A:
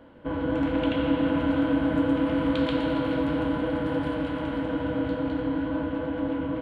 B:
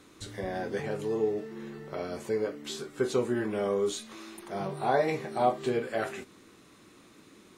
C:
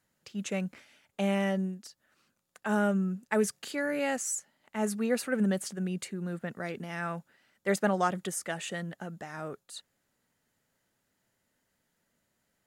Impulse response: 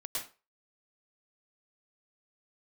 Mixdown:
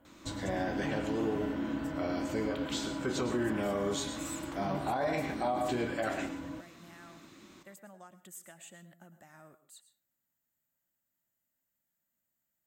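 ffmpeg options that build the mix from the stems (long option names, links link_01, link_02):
-filter_complex "[0:a]volume=-12dB[link_01];[1:a]adelay=50,volume=-1dB,asplit=2[link_02][link_03];[link_03]volume=-8dB[link_04];[2:a]acompressor=threshold=-34dB:ratio=6,aexciter=amount=2.5:drive=9.6:freq=7600,volume=-16dB,asplit=2[link_05][link_06];[link_06]volume=-12dB[link_07];[3:a]atrim=start_sample=2205[link_08];[link_04][link_07]amix=inputs=2:normalize=0[link_09];[link_09][link_08]afir=irnorm=-1:irlink=0[link_10];[link_01][link_02][link_05][link_10]amix=inputs=4:normalize=0,superequalizer=7b=0.398:16b=0.316,alimiter=limit=-23dB:level=0:latency=1:release=46"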